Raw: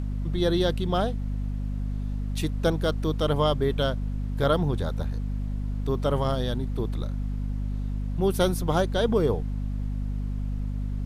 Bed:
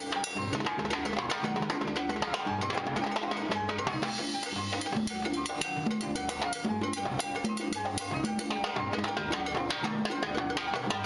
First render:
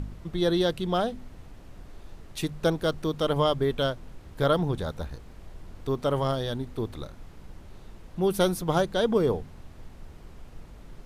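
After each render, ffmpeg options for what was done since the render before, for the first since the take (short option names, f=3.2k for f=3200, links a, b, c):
-af "bandreject=f=50:t=h:w=4,bandreject=f=100:t=h:w=4,bandreject=f=150:t=h:w=4,bandreject=f=200:t=h:w=4,bandreject=f=250:t=h:w=4"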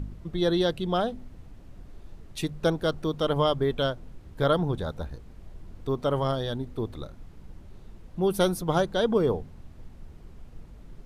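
-af "afftdn=nr=6:nf=-47"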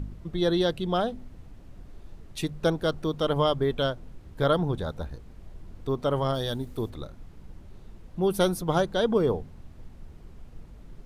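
-filter_complex "[0:a]asplit=3[a][b][c];[a]afade=t=out:st=6.34:d=0.02[d];[b]aemphasis=mode=production:type=50kf,afade=t=in:st=6.34:d=0.02,afade=t=out:st=6.89:d=0.02[e];[c]afade=t=in:st=6.89:d=0.02[f];[d][e][f]amix=inputs=3:normalize=0"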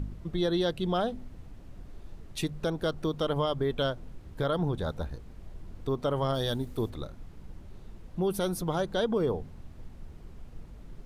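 -af "alimiter=limit=-19dB:level=0:latency=1:release=158"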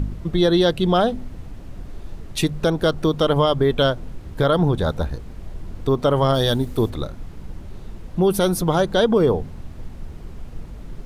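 -af "volume=11dB"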